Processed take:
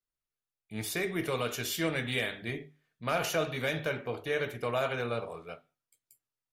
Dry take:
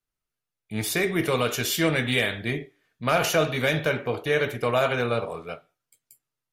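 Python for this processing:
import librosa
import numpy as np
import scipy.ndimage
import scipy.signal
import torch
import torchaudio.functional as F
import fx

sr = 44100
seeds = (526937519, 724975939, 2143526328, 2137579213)

y = fx.hum_notches(x, sr, base_hz=50, count=5)
y = y * librosa.db_to_amplitude(-8.0)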